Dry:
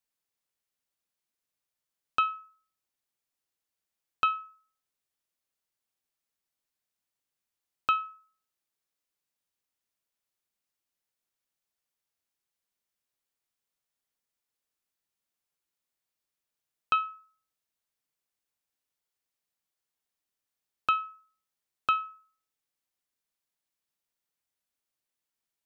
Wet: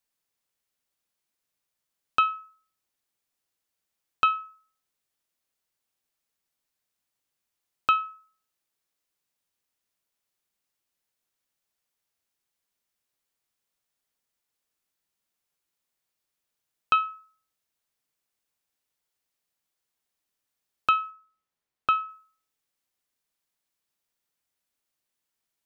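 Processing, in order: 21.1–22.09 high shelf 3700 Hz -9.5 dB; gain +4 dB

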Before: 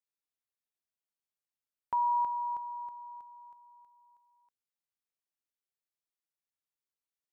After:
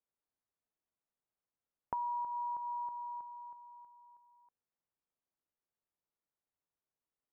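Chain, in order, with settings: compressor, threshold -40 dBFS, peak gain reduction 12 dB; LPF 1200 Hz 12 dB/oct; gain +5 dB

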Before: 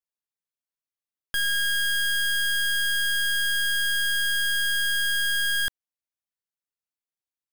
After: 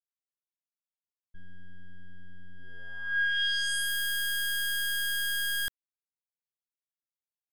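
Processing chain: expander -18 dBFS; low-pass sweep 230 Hz -> 15000 Hz, 2.54–3.93; mismatched tape noise reduction encoder only; gain +5.5 dB

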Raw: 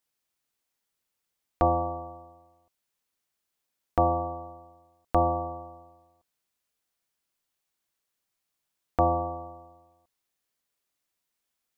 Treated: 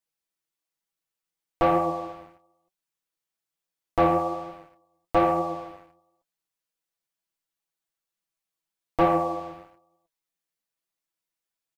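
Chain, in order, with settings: comb 6.1 ms, depth 76%; sample leveller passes 2; flange 1.1 Hz, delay 4.8 ms, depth 7.9 ms, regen +59%

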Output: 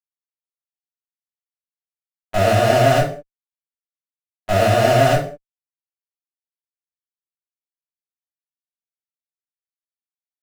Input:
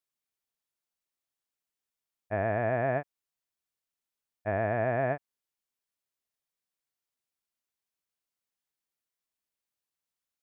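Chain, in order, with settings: LPF 1800 Hz 6 dB/oct; gate -28 dBFS, range -59 dB; in parallel at -7.5 dB: fuzz box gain 55 dB, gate -55 dBFS; on the sum: reverb, pre-delay 3 ms, DRR -4.5 dB; gain -1.5 dB

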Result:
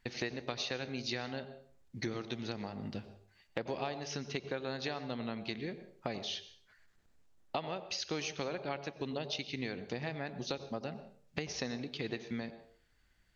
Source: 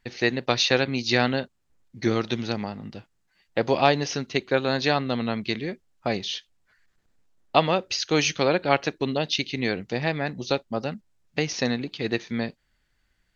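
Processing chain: compressor 6:1, threshold -34 dBFS, peak gain reduction 20 dB; on a send: reverb RT60 0.50 s, pre-delay 85 ms, DRR 11.5 dB; on the sum: gain -1.5 dB

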